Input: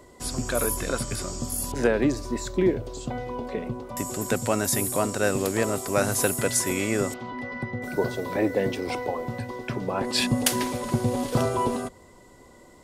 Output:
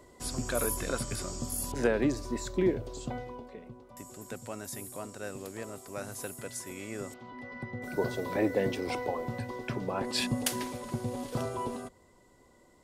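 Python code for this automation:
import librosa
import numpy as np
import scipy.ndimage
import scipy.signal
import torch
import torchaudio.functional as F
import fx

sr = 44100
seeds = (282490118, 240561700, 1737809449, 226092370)

y = fx.gain(x, sr, db=fx.line((3.13, -5.0), (3.55, -16.0), (6.71, -16.0), (8.14, -4.0), (9.67, -4.0), (10.87, -10.0)))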